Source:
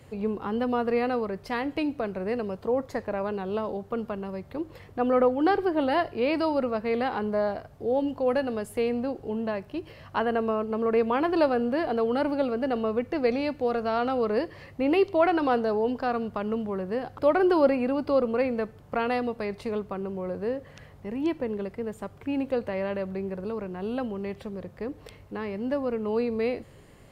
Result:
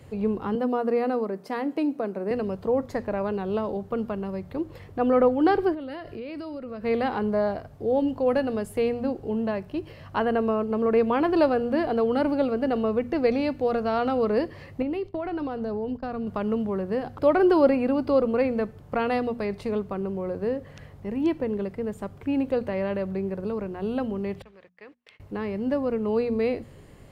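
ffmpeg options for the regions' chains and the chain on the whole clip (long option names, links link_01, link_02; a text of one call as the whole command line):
ffmpeg -i in.wav -filter_complex "[0:a]asettb=1/sr,asplit=3[link_01][link_02][link_03];[link_01]atrim=end=0.554[link_04];[link_02]atrim=start=0.55:end=2.31,asetpts=PTS-STARTPTS,afade=type=in:duration=0.004:curve=qsin,afade=type=out:start_time=1.756:duration=0.004:curve=qsin,highpass=frequency=200:width=0.5412,highpass=frequency=200:width=1.3066,equalizer=frequency=2900:width_type=o:width=1.8:gain=-7[link_05];[link_03]atrim=start=2.306[link_06];[link_04][link_05]acrossfade=duration=0.004:curve1=hsin:curve2=qsin[link_07];[link_07][link_06]acrossfade=duration=0.004:curve1=qsin:curve2=hsin,asettb=1/sr,asplit=3[link_08][link_09][link_10];[link_08]atrim=end=5.744[link_11];[link_09]atrim=start=5.74:end=6.84,asetpts=PTS-STARTPTS,afade=type=in:duration=0.004:curve=qsin,afade=type=out:start_time=1.096:duration=0.004:curve=qsin,equalizer=frequency=850:width_type=o:width=0.46:gain=-10,acompressor=threshold=-35dB:ratio=8:attack=3.2:release=140:knee=1:detection=peak[link_12];[link_10]atrim=start=6.836[link_13];[link_11][link_12]acrossfade=duration=0.004:curve1=hsin:curve2=qsin[link_14];[link_14][link_13]acrossfade=duration=0.004:curve1=qsin:curve2=hsin,asettb=1/sr,asplit=3[link_15][link_16][link_17];[link_15]atrim=end=14.824[link_18];[link_16]atrim=start=14.82:end=16.27,asetpts=PTS-STARTPTS,afade=type=in:duration=0.004:curve=qsin,afade=type=out:start_time=1.446:duration=0.004:curve=qsin,agate=range=-33dB:threshold=-28dB:ratio=3:release=100:detection=peak,lowshelf=frequency=220:gain=11,acompressor=threshold=-30dB:ratio=6:attack=3.2:release=140:knee=1:detection=peak[link_19];[link_17]atrim=start=16.266[link_20];[link_18][link_19]acrossfade=duration=0.004:curve1=hsin:curve2=qsin[link_21];[link_21][link_20]acrossfade=duration=0.004:curve1=qsin:curve2=hsin,asettb=1/sr,asplit=3[link_22][link_23][link_24];[link_22]atrim=end=24.424[link_25];[link_23]atrim=start=24.42:end=25.2,asetpts=PTS-STARTPTS,afade=type=in:duration=0.004:curve=qsin,afade=type=out:start_time=0.776:duration=0.004:curve=qsin,bandpass=frequency=2300:width_type=q:width=1.3,agate=range=-30dB:threshold=-58dB:ratio=16:release=100:detection=peak[link_26];[link_24]atrim=start=25.196[link_27];[link_25][link_26]acrossfade=duration=0.004:curve1=hsin:curve2=qsin[link_28];[link_28][link_27]acrossfade=duration=0.004:curve1=qsin:curve2=hsin,lowshelf=frequency=380:gain=5.5,bandreject=frequency=60:width_type=h:width=6,bandreject=frequency=120:width_type=h:width=6,bandreject=frequency=180:width_type=h:width=6,bandreject=frequency=240:width_type=h:width=6" out.wav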